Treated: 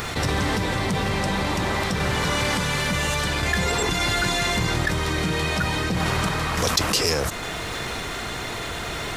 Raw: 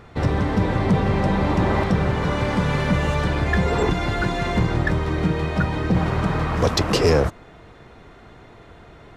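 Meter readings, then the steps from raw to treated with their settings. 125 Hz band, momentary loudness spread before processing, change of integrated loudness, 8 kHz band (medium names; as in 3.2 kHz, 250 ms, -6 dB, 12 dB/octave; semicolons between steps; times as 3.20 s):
-5.0 dB, 3 LU, -2.0 dB, +10.5 dB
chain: pre-emphasis filter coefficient 0.9; random-step tremolo; level flattener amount 70%; trim +7 dB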